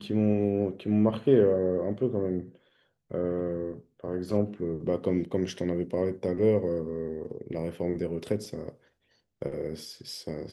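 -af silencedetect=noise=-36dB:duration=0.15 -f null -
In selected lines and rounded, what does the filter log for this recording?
silence_start: 2.43
silence_end: 3.11 | silence_duration: 0.69
silence_start: 3.79
silence_end: 4.04 | silence_duration: 0.25
silence_start: 8.69
silence_end: 9.42 | silence_duration: 0.73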